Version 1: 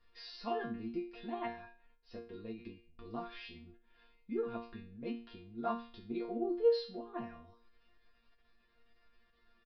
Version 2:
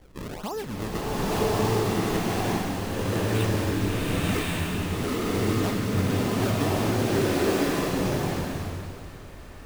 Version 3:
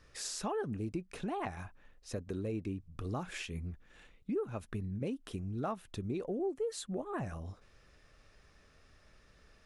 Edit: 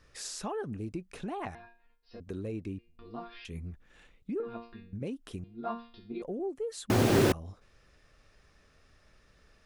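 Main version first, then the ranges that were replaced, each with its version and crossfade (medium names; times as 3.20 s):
3
1.55–2.20 s: from 1
2.79–3.45 s: from 1
4.40–4.93 s: from 1
5.44–6.22 s: from 1
6.90–7.32 s: from 2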